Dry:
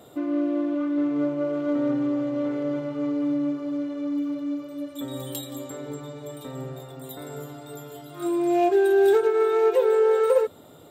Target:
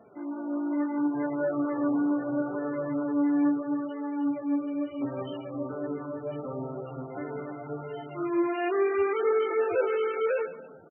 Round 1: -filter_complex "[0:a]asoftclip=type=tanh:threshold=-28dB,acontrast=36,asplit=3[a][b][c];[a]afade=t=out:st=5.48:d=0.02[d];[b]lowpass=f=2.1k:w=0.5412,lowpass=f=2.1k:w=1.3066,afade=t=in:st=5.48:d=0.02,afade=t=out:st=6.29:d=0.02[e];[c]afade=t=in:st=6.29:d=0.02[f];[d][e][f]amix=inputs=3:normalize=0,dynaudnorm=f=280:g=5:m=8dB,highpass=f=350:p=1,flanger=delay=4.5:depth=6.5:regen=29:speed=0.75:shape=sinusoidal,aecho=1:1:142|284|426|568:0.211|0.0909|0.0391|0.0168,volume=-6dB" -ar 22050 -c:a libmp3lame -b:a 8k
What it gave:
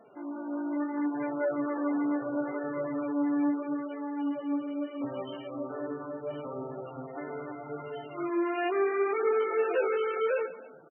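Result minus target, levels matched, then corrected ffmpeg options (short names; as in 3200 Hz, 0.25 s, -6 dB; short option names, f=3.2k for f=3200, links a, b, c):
125 Hz band -4.5 dB
-filter_complex "[0:a]asoftclip=type=tanh:threshold=-28dB,acontrast=36,asplit=3[a][b][c];[a]afade=t=out:st=5.48:d=0.02[d];[b]lowpass=f=2.1k:w=0.5412,lowpass=f=2.1k:w=1.3066,afade=t=in:st=5.48:d=0.02,afade=t=out:st=6.29:d=0.02[e];[c]afade=t=in:st=6.29:d=0.02[f];[d][e][f]amix=inputs=3:normalize=0,dynaudnorm=f=280:g=5:m=8dB,highpass=f=110:p=1,flanger=delay=4.5:depth=6.5:regen=29:speed=0.75:shape=sinusoidal,aecho=1:1:142|284|426|568:0.211|0.0909|0.0391|0.0168,volume=-6dB" -ar 22050 -c:a libmp3lame -b:a 8k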